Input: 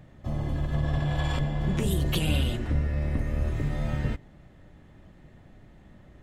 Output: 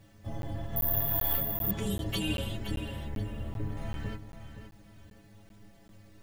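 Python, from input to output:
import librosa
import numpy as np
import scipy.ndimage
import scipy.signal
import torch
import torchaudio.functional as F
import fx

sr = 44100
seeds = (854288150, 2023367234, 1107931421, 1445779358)

p1 = fx.lowpass(x, sr, hz=1500.0, slope=6, at=(3.05, 3.77))
p2 = fx.quant_dither(p1, sr, seeds[0], bits=10, dither='none')
p3 = fx.stiff_resonator(p2, sr, f0_hz=100.0, decay_s=0.28, stiffness=0.008)
p4 = p3 + fx.echo_feedback(p3, sr, ms=520, feedback_pct=28, wet_db=-10, dry=0)
p5 = fx.resample_bad(p4, sr, factor=3, down='filtered', up='zero_stuff', at=(0.76, 1.71))
p6 = fx.buffer_crackle(p5, sr, first_s=0.42, period_s=0.39, block=512, kind='zero')
y = F.gain(torch.from_numpy(p6), 4.5).numpy()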